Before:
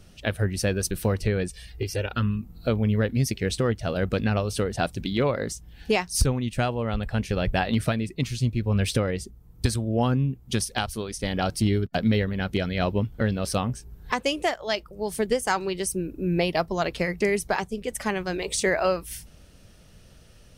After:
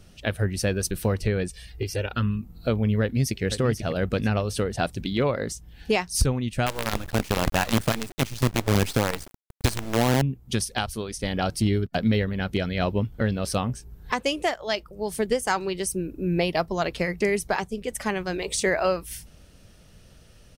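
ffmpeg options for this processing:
ffmpeg -i in.wav -filter_complex "[0:a]asplit=2[link_01][link_02];[link_02]afade=type=in:start_time=3.02:duration=0.01,afade=type=out:start_time=3.43:duration=0.01,aecho=0:1:490|980|1470:0.354813|0.0887033|0.0221758[link_03];[link_01][link_03]amix=inputs=2:normalize=0,asettb=1/sr,asplit=3[link_04][link_05][link_06];[link_04]atrim=end=6.664[link_07];[link_05]atrim=start=6.66:end=10.22,asetpts=PTS-STARTPTS,afade=type=in:duration=0.004:curve=qsin,afade=type=out:start_time=3.556:duration=0.004:curve=qsin,acrusher=bits=4:dc=4:mix=0:aa=0.000001[link_08];[link_06]atrim=start=10.216[link_09];[link_07][link_08]acrossfade=duration=0.004:curve1=hsin:curve2=qsin[link_10];[link_10][link_09]acrossfade=duration=0.004:curve1=qsin:curve2=hsin" out.wav

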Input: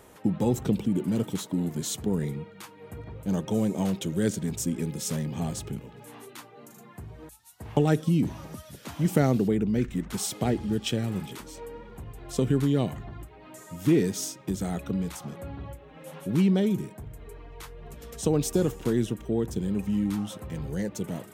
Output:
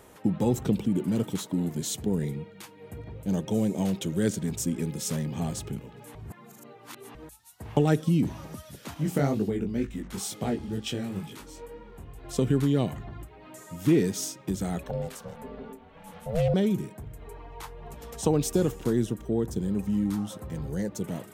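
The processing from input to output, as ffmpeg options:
ffmpeg -i in.wav -filter_complex "[0:a]asettb=1/sr,asplit=3[link_01][link_02][link_03];[link_01]atrim=end=1.744[link_04];[link_02]atrim=start=1.74:end=3.95,asetpts=PTS-STARTPTS,afade=type=in:duration=0.004:curve=qsin,afade=type=out:start_time=2.206:duration=0.004:curve=qsin,equalizer=frequency=1200:width_type=o:width=0.77:gain=-5.5[link_05];[link_03]atrim=start=3.946[link_06];[link_04][link_05]acrossfade=duration=0.004:curve1=hsin:curve2=qsin[link_07];[link_07][link_06]acrossfade=duration=0.004:curve1=qsin:curve2=hsin,asettb=1/sr,asplit=3[link_08][link_09][link_10];[link_08]atrim=end=8.944[link_11];[link_09]atrim=start=8.94:end=12.24,asetpts=PTS-STARTPTS,afade=type=in:duration=0.004:curve=qsin,afade=type=out:start_time=3.296:duration=0.004:curve=qsin,flanger=delay=18.5:depth=3.8:speed=2.1[link_12];[link_10]atrim=start=12.236[link_13];[link_11][link_12]acrossfade=duration=0.004:curve1=hsin:curve2=qsin[link_14];[link_14][link_13]acrossfade=duration=0.004:curve1=qsin:curve2=hsin,asettb=1/sr,asplit=3[link_15][link_16][link_17];[link_15]atrim=end=14.834[link_18];[link_16]atrim=start=14.83:end=16.54,asetpts=PTS-STARTPTS,afade=type=in:duration=0.004:curve=qsin,afade=type=out:start_time=1.706:duration=0.004:curve=qsin,aeval=exprs='val(0)*sin(2*PI*330*n/s)':channel_layout=same[link_19];[link_17]atrim=start=16.536[link_20];[link_18][link_19]acrossfade=duration=0.004:curve1=hsin:curve2=qsin[link_21];[link_21][link_20]acrossfade=duration=0.004:curve1=qsin:curve2=hsin,asettb=1/sr,asplit=3[link_22][link_23][link_24];[link_22]atrim=end=17.224[link_25];[link_23]atrim=start=17.22:end=18.31,asetpts=PTS-STARTPTS,afade=type=in:duration=0.004:curve=qsin,afade=type=out:start_time=1.086:duration=0.004:curve=qsin,equalizer=frequency=870:width_type=o:width=0.61:gain=9.5[link_26];[link_24]atrim=start=18.306[link_27];[link_25][link_26]acrossfade=duration=0.004:curve1=hsin:curve2=qsin[link_28];[link_28][link_27]acrossfade=duration=0.004:curve1=qsin:curve2=hsin,asettb=1/sr,asplit=3[link_29][link_30][link_31];[link_29]atrim=end=18.834[link_32];[link_30]atrim=start=18.83:end=21.03,asetpts=PTS-STARTPTS,afade=type=in:duration=0.004:curve=qsin,afade=type=out:start_time=2.196:duration=0.004:curve=qsin,equalizer=frequency=2600:width=1.5:gain=-5.5[link_33];[link_31]atrim=start=21.026[link_34];[link_32][link_33]acrossfade=duration=0.004:curve1=hsin:curve2=qsin[link_35];[link_35][link_34]acrossfade=duration=0.004:curve1=qsin:curve2=hsin,asplit=3[link_36][link_37][link_38];[link_36]atrim=end=6.152[link_39];[link_37]atrim=start=6.148:end=7.152,asetpts=PTS-STARTPTS,areverse[link_40];[link_38]atrim=start=7.148[link_41];[link_39][link_40]acrossfade=duration=0.004:curve1=hsin:curve2=hsin[link_42];[link_42][link_41]acrossfade=duration=0.004:curve1=hsin:curve2=hsin" out.wav

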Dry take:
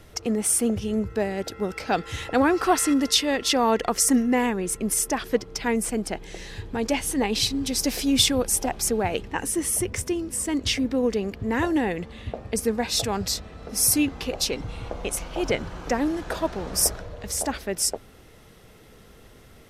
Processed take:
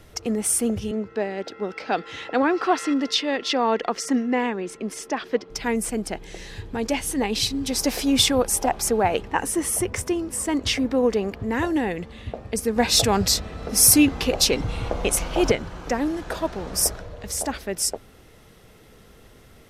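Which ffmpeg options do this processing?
ffmpeg -i in.wav -filter_complex "[0:a]asettb=1/sr,asplit=3[link_01][link_02][link_03];[link_01]atrim=end=0.914[link_04];[link_02]atrim=start=0.91:end=5.5,asetpts=PTS-STARTPTS,afade=type=in:duration=0.004:curve=qsin,afade=type=out:start_time=4.586:duration=0.004:curve=qsin,acrossover=split=180 5500:gain=0.0794 1 0.0891[link_05][link_06][link_07];[link_05][link_06][link_07]amix=inputs=3:normalize=0[link_08];[link_03]atrim=start=5.496[link_09];[link_04][link_08]acrossfade=duration=0.004:curve1=hsin:curve2=qsin[link_10];[link_10][link_09]acrossfade=duration=0.004:curve1=qsin:curve2=hsin,asettb=1/sr,asplit=3[link_11][link_12][link_13];[link_11]atrim=end=7.684[link_14];[link_12]atrim=start=7.68:end=11.45,asetpts=PTS-STARTPTS,afade=type=in:duration=0.004:curve=qsin,afade=type=out:start_time=3.766:duration=0.004:curve=qsin,equalizer=frequency=890:width_type=o:width=1.9:gain=7[link_15];[link_13]atrim=start=11.446[link_16];[link_14][link_15]acrossfade=duration=0.004:curve1=hsin:curve2=qsin[link_17];[link_17][link_16]acrossfade=duration=0.004:curve1=qsin:curve2=hsin,asettb=1/sr,asplit=3[link_18][link_19][link_20];[link_18]atrim=end=12.764[link_21];[link_19]atrim=start=12.76:end=15.52,asetpts=PTS-STARTPTS,afade=type=in:duration=0.004:curve=qsin,afade=type=out:start_time=2.756:duration=0.004:curve=qsin,acontrast=71[link_22];[link_20]atrim=start=15.516[link_23];[link_21][link_22]acrossfade=duration=0.004:curve1=hsin:curve2=qsin[link_24];[link_24][link_23]acrossfade=duration=0.004:curve1=qsin:curve2=hsin" out.wav

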